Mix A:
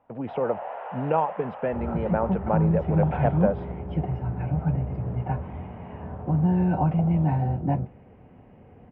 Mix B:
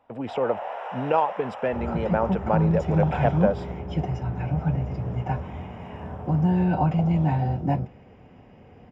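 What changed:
speech: add parametric band 160 Hz −9 dB 0.22 octaves
master: remove high-frequency loss of the air 490 metres

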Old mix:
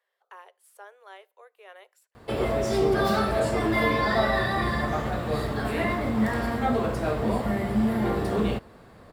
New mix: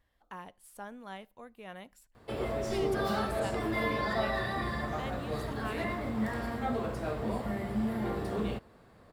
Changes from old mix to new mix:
speech: remove Chebyshev high-pass with heavy ripple 380 Hz, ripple 3 dB
background −8.0 dB

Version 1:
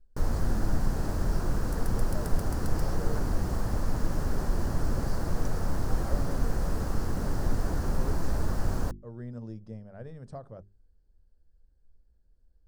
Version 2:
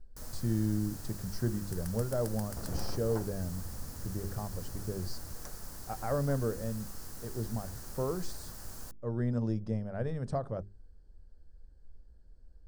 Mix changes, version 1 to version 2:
speech +8.5 dB
first sound: add first-order pre-emphasis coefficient 0.9

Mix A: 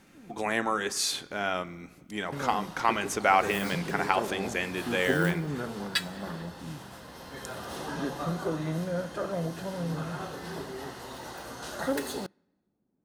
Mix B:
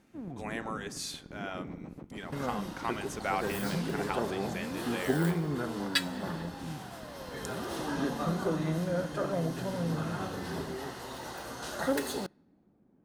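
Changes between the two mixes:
speech −10.0 dB
first sound +11.5 dB

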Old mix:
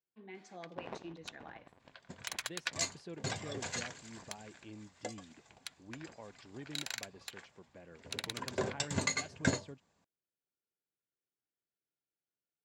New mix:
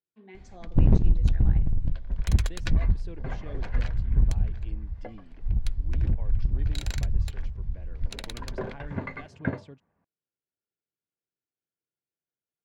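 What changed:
first sound: remove high-pass filter 860 Hz 12 dB per octave
second sound: add low-pass filter 2,000 Hz 24 dB per octave
master: add low-shelf EQ 280 Hz +4.5 dB

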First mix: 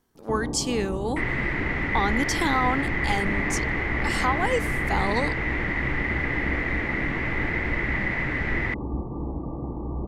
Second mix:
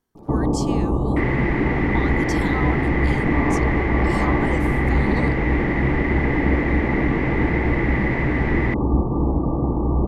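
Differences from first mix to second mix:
speech −7.0 dB
first sound +11.0 dB

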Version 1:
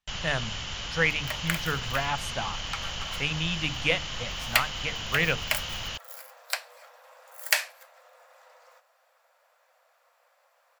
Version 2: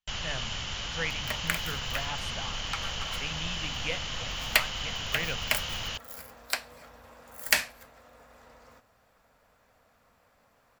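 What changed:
speech −9.0 dB
second sound: remove linear-phase brick-wall high-pass 480 Hz

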